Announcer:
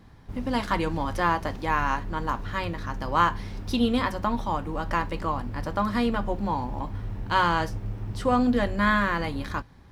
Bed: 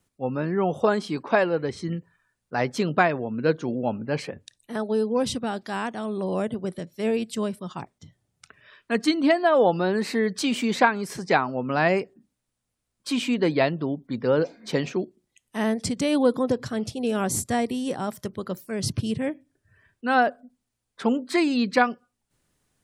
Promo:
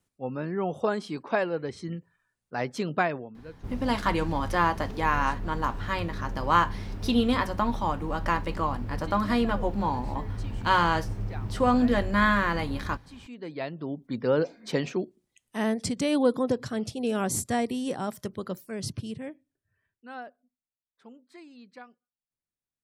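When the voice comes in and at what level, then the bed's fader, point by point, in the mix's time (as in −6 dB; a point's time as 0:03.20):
3.35 s, 0.0 dB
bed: 0:03.16 −5.5 dB
0:03.44 −23 dB
0:13.17 −23 dB
0:14.05 −2.5 dB
0:18.46 −2.5 dB
0:20.81 −27 dB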